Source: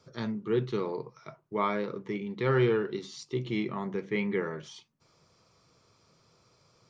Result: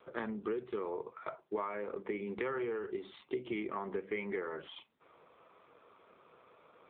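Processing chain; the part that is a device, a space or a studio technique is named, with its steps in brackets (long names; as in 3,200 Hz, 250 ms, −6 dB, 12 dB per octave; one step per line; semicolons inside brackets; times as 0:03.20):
voicemail (band-pass filter 370–2,600 Hz; downward compressor 10 to 1, threshold −43 dBFS, peak gain reduction 18.5 dB; level +9.5 dB; AMR narrowband 7.4 kbit/s 8,000 Hz)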